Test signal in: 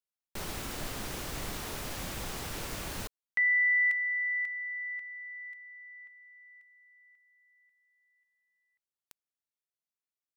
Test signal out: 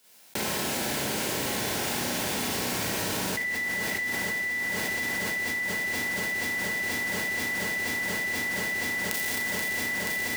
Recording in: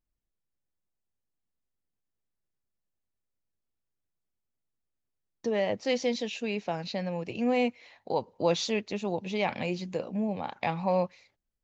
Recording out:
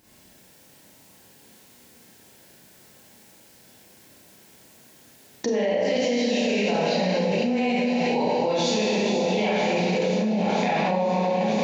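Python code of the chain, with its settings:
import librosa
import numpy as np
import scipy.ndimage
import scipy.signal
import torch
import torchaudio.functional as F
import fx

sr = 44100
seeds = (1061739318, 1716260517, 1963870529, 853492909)

y = scipy.signal.sosfilt(scipy.signal.butter(2, 140.0, 'highpass', fs=sr, output='sos'), x)
y = fx.notch(y, sr, hz=1200.0, q=5.0)
y = fx.echo_alternate(y, sr, ms=240, hz=1800.0, feedback_pct=89, wet_db=-9.5)
y = fx.rev_schroeder(y, sr, rt60_s=1.5, comb_ms=29, drr_db=-9.5)
y = fx.env_flatten(y, sr, amount_pct=100)
y = F.gain(torch.from_numpy(y), -9.0).numpy()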